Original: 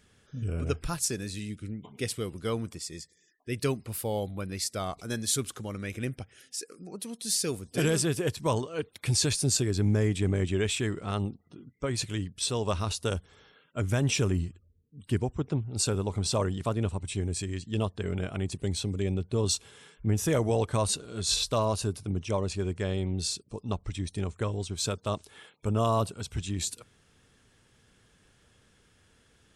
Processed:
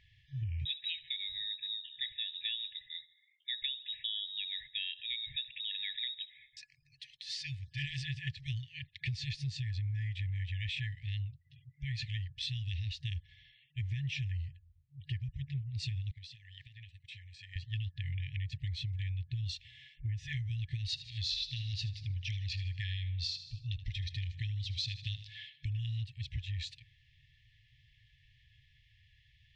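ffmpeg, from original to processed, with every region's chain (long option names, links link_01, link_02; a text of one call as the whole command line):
ffmpeg -i in.wav -filter_complex "[0:a]asettb=1/sr,asplit=3[link_01][link_02][link_03];[link_01]atrim=end=0.654[link_04];[link_02]atrim=start=0.65:end=6.57,asetpts=PTS-STARTPTS,afade=type=in:duration=0.004:curve=qsin,afade=type=out:start_time=5.916:duration=0.004:curve=qsin,asplit=2[link_05][link_06];[link_06]adelay=68,lowpass=frequency=1500:poles=1,volume=-19.5dB,asplit=2[link_07][link_08];[link_08]adelay=68,lowpass=frequency=1500:poles=1,volume=0.5,asplit=2[link_09][link_10];[link_10]adelay=68,lowpass=frequency=1500:poles=1,volume=0.5,asplit=2[link_11][link_12];[link_12]adelay=68,lowpass=frequency=1500:poles=1,volume=0.5[link_13];[link_05][link_07][link_09][link_11][link_13]amix=inputs=5:normalize=0,atrim=end_sample=261072,lowpass=frequency=3300:width_type=q:width=0.5098,lowpass=frequency=3300:width_type=q:width=0.6013,lowpass=frequency=3300:width_type=q:width=0.9,lowpass=frequency=3300:width_type=q:width=2.563,afreqshift=-3900[link_14];[link_03]atrim=start=6.566[link_15];[link_04][link_14]acrossfade=duration=0.004:curve1=hsin:curve2=qsin[link_16];[link_16][link_15]acrossfade=duration=0.004:curve1=qsin:curve2=hsin,asettb=1/sr,asplit=3[link_17][link_18][link_19];[link_17]atrim=end=16.114[link_20];[link_18]atrim=start=16.11:end=17.56,asetpts=PTS-STARTPTS,afade=type=in:duration=0.004:curve=qsin,afade=type=out:start_time=1.446:duration=0.004:curve=qsin,highpass=frequency=560:poles=1,agate=range=-33dB:threshold=-41dB:ratio=3:release=100:detection=peak,acompressor=threshold=-40dB:ratio=10:attack=3.2:release=140:knee=1:detection=peak[link_21];[link_19]atrim=start=17.556[link_22];[link_20][link_21]acrossfade=duration=0.004:curve1=hsin:curve2=qsin[link_23];[link_23][link_22]acrossfade=duration=0.004:curve1=qsin:curve2=hsin,asettb=1/sr,asplit=3[link_24][link_25][link_26];[link_24]atrim=end=20.854[link_27];[link_25]atrim=start=20.85:end=25.77,asetpts=PTS-STARTPTS,afade=type=in:duration=0.004:curve=qsin,afade=type=out:start_time=4.916:duration=0.004:curve=qsin,equalizer=frequency=4800:width_type=o:width=1.3:gain=10.5,aecho=1:1:77|154|231|308:0.178|0.0782|0.0344|0.0151,atrim=end_sample=216972[link_28];[link_26]atrim=start=25.766[link_29];[link_27][link_28]acrossfade=duration=0.004:curve1=hsin:curve2=qsin[link_30];[link_30][link_29]acrossfade=duration=0.004:curve1=qsin:curve2=hsin,afftfilt=real='re*(1-between(b*sr/4096,150,1700))':imag='im*(1-between(b*sr/4096,150,1700))':win_size=4096:overlap=0.75,lowpass=frequency=3800:width=0.5412,lowpass=frequency=3800:width=1.3066,acompressor=threshold=-35dB:ratio=6,volume=1dB" out.wav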